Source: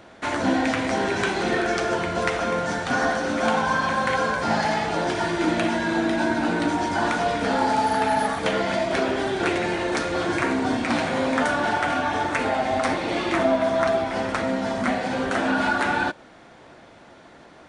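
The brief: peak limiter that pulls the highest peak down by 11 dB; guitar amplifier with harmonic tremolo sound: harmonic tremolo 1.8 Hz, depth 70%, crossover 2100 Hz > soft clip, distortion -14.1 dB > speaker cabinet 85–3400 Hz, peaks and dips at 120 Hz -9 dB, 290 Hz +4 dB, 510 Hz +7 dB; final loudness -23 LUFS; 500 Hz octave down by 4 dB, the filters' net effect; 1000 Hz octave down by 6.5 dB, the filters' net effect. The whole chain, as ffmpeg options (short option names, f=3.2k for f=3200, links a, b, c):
-filter_complex "[0:a]equalizer=f=500:t=o:g=-7.5,equalizer=f=1k:t=o:g=-6.5,alimiter=limit=-19dB:level=0:latency=1,acrossover=split=2100[a][b];[a]aeval=exprs='val(0)*(1-0.7/2+0.7/2*cos(2*PI*1.8*n/s))':c=same[c];[b]aeval=exprs='val(0)*(1-0.7/2-0.7/2*cos(2*PI*1.8*n/s))':c=same[d];[c][d]amix=inputs=2:normalize=0,asoftclip=threshold=-27.5dB,highpass=85,equalizer=f=120:t=q:w=4:g=-9,equalizer=f=290:t=q:w=4:g=4,equalizer=f=510:t=q:w=4:g=7,lowpass=f=3.4k:w=0.5412,lowpass=f=3.4k:w=1.3066,volume=10dB"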